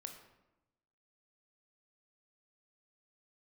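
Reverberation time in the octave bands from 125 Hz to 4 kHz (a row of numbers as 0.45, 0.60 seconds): 1.2, 1.2, 1.0, 0.95, 0.80, 0.60 seconds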